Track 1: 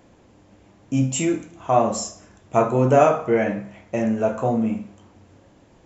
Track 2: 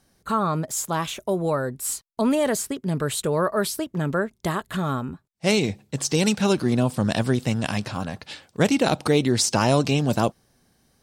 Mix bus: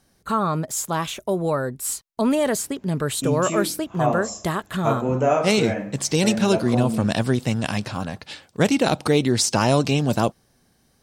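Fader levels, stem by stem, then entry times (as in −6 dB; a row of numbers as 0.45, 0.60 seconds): −4.5, +1.0 decibels; 2.30, 0.00 seconds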